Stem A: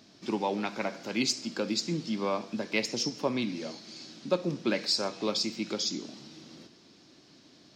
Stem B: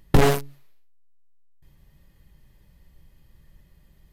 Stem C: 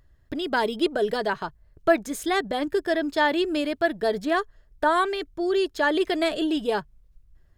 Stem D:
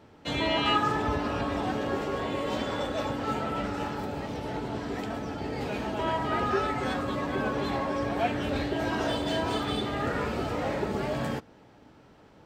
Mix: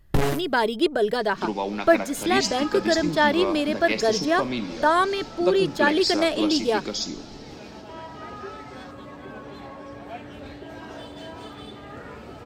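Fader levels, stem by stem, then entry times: +2.5 dB, -5.5 dB, +2.0 dB, -10.0 dB; 1.15 s, 0.00 s, 0.00 s, 1.90 s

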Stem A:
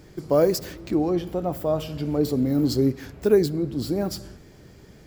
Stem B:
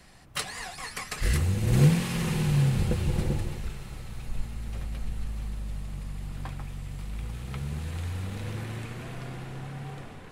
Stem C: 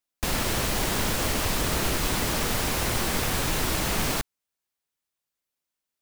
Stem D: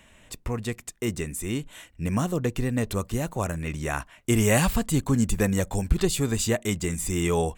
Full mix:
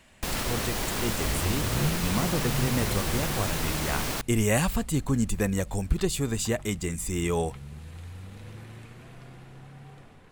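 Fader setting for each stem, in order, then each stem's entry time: mute, -8.5 dB, -4.0 dB, -3.0 dB; mute, 0.00 s, 0.00 s, 0.00 s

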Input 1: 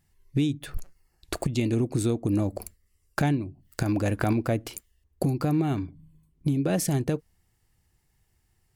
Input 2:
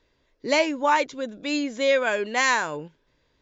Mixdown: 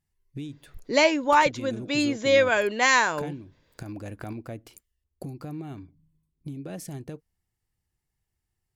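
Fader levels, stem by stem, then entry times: -12.0 dB, +1.5 dB; 0.00 s, 0.45 s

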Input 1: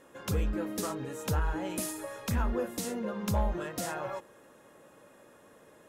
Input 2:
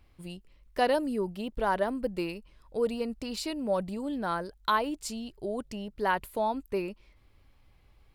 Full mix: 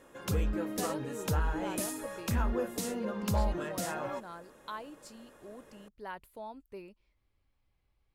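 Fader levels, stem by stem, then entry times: -0.5 dB, -15.0 dB; 0.00 s, 0.00 s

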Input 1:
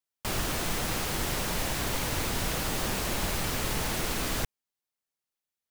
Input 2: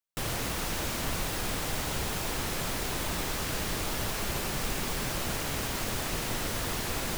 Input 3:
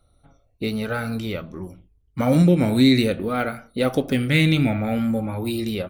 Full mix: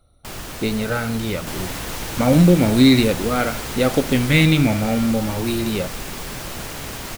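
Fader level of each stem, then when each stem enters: -2.5 dB, +1.5 dB, +3.0 dB; 0.00 s, 1.30 s, 0.00 s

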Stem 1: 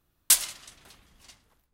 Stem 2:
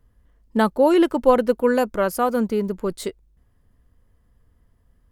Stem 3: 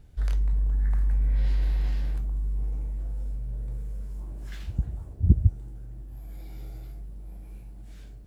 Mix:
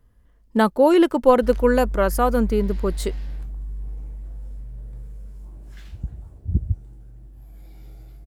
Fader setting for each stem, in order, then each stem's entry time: mute, +1.0 dB, -3.0 dB; mute, 0.00 s, 1.25 s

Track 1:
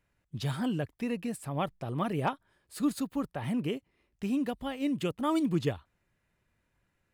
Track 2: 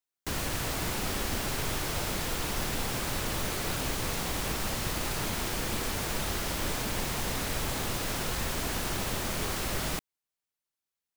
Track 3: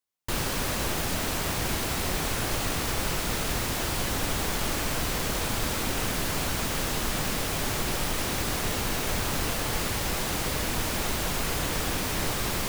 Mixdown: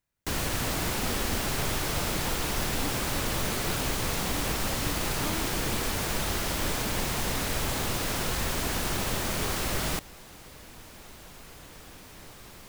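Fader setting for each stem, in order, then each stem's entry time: -11.0 dB, +2.5 dB, -19.0 dB; 0.00 s, 0.00 s, 0.00 s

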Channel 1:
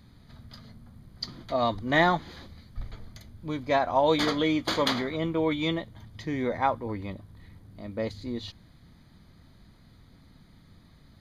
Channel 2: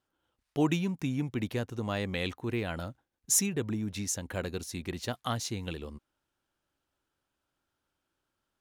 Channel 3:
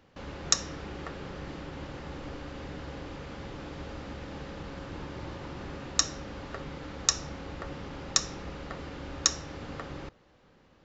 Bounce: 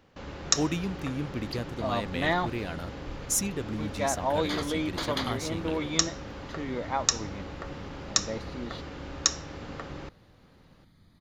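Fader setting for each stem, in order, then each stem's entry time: -5.0 dB, -1.5 dB, +0.5 dB; 0.30 s, 0.00 s, 0.00 s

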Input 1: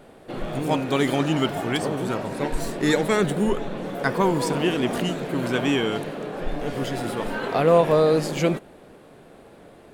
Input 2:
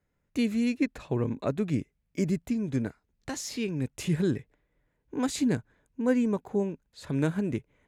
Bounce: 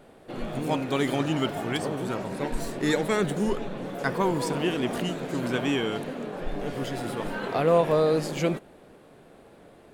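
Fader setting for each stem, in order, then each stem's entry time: -4.0 dB, -14.5 dB; 0.00 s, 0.00 s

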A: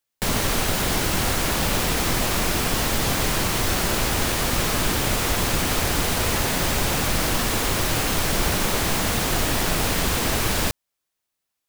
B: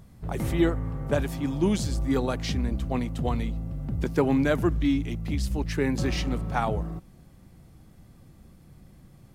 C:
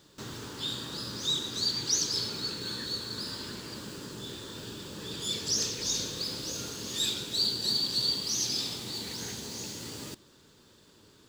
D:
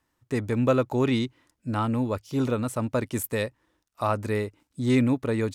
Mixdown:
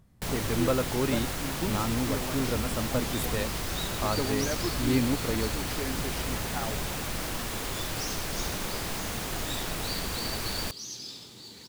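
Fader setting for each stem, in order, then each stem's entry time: -11.0 dB, -9.5 dB, -9.5 dB, -5.0 dB; 0.00 s, 0.00 s, 2.50 s, 0.00 s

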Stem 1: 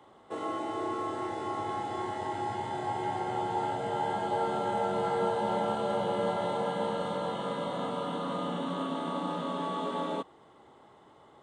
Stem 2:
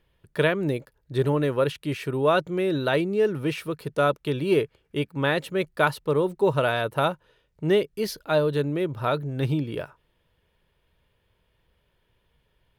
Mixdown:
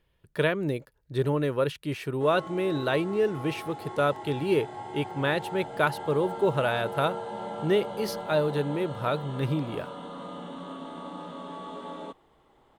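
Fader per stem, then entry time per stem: -6.0 dB, -3.0 dB; 1.90 s, 0.00 s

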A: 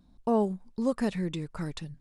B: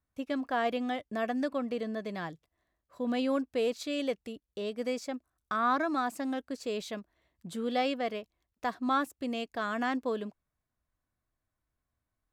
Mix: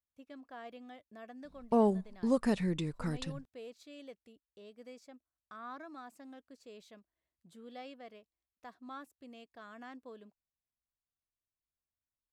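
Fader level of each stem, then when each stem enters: -1.5 dB, -18.0 dB; 1.45 s, 0.00 s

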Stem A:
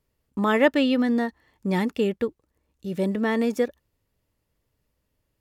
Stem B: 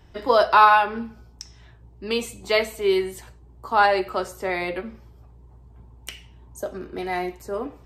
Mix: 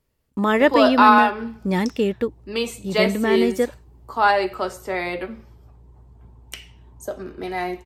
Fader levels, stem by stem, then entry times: +2.5 dB, +0.5 dB; 0.00 s, 0.45 s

